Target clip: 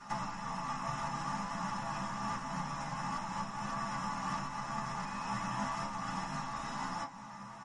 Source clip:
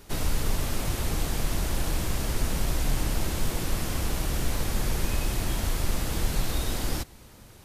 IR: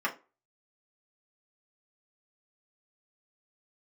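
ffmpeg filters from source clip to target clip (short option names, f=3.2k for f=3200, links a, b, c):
-filter_complex "[0:a]equalizer=f=70:w=3:g=-13,asplit=2[a][b];[b]adelay=15,volume=-4dB[c];[a][c]amix=inputs=2:normalize=0,acompressor=threshold=-33dB:ratio=6,flanger=delay=8.5:depth=5.2:regen=-44:speed=0.53:shape=triangular,firequalizer=gain_entry='entry(170,0);entry(400,-19);entry(860,6);entry(1600,-5);entry(2200,-10);entry(6400,0);entry(14000,-29)':delay=0.05:min_phase=1[d];[1:a]atrim=start_sample=2205[e];[d][e]afir=irnorm=-1:irlink=0,volume=4dB" -ar 48000 -c:a libmp3lame -b:a 48k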